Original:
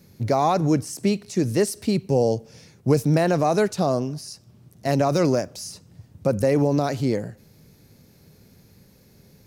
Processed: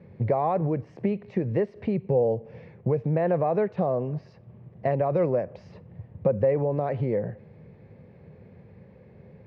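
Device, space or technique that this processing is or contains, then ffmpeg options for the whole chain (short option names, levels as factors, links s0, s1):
bass amplifier: -af "acompressor=threshold=0.0447:ratio=4,highpass=67,equalizer=f=280:t=q:w=4:g=-9,equalizer=f=510:t=q:w=4:g=6,equalizer=f=1400:t=q:w=4:g=-9,lowpass=f=2100:w=0.5412,lowpass=f=2100:w=1.3066,volume=1.68"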